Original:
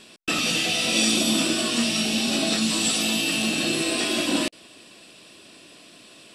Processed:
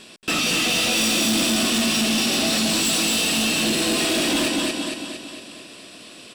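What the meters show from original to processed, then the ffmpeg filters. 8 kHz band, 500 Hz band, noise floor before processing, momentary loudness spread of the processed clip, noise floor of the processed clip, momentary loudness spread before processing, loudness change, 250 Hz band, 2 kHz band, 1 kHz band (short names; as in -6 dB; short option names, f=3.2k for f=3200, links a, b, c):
+3.5 dB, +3.0 dB, -49 dBFS, 14 LU, -43 dBFS, 4 LU, +2.5 dB, +2.0 dB, +3.0 dB, +4.0 dB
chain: -filter_complex "[0:a]asplit=2[a][b];[b]aecho=0:1:229|458|687|916|1145|1374|1603:0.668|0.361|0.195|0.105|0.0568|0.0307|0.0166[c];[a][c]amix=inputs=2:normalize=0,asoftclip=type=hard:threshold=-22dB,volume=4dB"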